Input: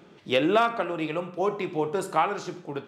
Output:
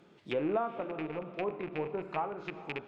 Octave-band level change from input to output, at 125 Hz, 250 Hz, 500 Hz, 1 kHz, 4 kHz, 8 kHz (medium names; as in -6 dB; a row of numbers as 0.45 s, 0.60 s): -7.0 dB, -8.0 dB, -8.5 dB, -11.0 dB, -15.0 dB, under -25 dB